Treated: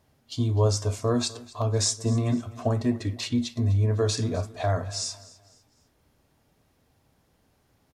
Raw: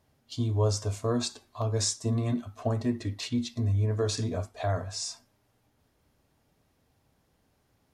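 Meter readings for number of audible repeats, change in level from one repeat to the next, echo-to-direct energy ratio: 2, -8.5 dB, -19.5 dB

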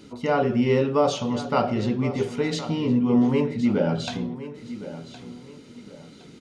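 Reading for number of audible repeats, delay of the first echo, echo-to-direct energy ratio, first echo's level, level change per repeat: 2, 1.065 s, -13.5 dB, -14.0 dB, -9.5 dB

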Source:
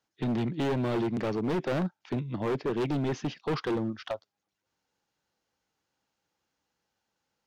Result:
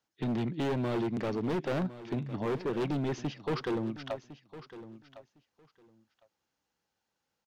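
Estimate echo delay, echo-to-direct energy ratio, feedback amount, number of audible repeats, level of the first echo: 1.057 s, -15.0 dB, 16%, 2, -15.0 dB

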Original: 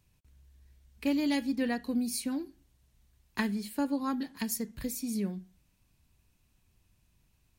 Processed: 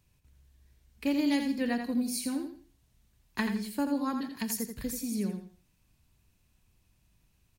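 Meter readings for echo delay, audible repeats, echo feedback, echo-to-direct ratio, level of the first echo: 84 ms, 3, 27%, -6.5 dB, -7.0 dB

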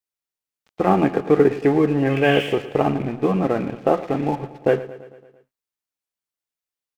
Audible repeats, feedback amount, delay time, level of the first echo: 5, 60%, 0.112 s, -16.0 dB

